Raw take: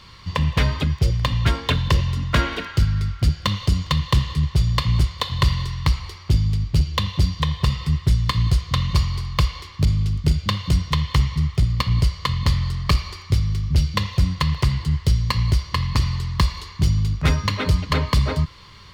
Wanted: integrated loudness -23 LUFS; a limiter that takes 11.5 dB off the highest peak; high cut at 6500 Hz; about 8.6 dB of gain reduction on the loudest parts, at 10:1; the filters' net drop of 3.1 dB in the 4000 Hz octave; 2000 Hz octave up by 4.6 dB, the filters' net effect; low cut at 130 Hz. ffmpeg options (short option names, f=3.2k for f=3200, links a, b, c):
-af "highpass=130,lowpass=6.5k,equalizer=f=2k:t=o:g=7,equalizer=f=4k:t=o:g=-6,acompressor=threshold=-26dB:ratio=10,volume=10.5dB,alimiter=limit=-10.5dB:level=0:latency=1"